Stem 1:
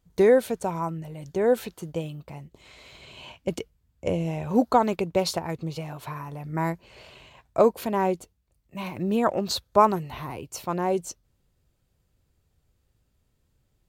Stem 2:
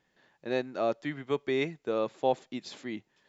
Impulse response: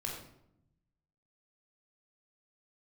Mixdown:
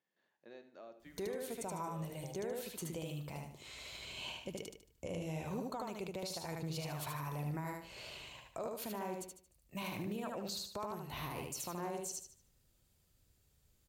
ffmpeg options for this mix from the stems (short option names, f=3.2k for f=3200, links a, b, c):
-filter_complex "[0:a]highshelf=f=3.2k:g=10.5,acompressor=threshold=-31dB:ratio=12,adelay=1000,volume=-6dB,asplit=2[a][b];[b]volume=-3.5dB[c];[1:a]highpass=180,acompressor=threshold=-37dB:ratio=3,volume=-17.5dB,asplit=3[d][e][f];[e]volume=-11dB[g];[f]volume=-11.5dB[h];[2:a]atrim=start_sample=2205[i];[g][i]afir=irnorm=-1:irlink=0[j];[c][h]amix=inputs=2:normalize=0,aecho=0:1:75|150|225|300|375:1|0.35|0.122|0.0429|0.015[k];[a][d][j][k]amix=inputs=4:normalize=0,alimiter=level_in=8dB:limit=-24dB:level=0:latency=1:release=33,volume=-8dB"